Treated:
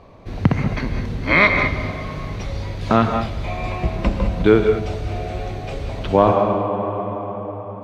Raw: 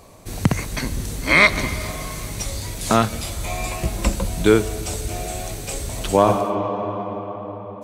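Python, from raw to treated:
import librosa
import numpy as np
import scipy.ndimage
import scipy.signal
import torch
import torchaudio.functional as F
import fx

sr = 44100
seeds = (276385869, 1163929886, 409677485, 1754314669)

y = fx.air_absorb(x, sr, metres=290.0)
y = fx.rev_gated(y, sr, seeds[0], gate_ms=230, shape='rising', drr_db=5.5)
y = y * librosa.db_to_amplitude(2.0)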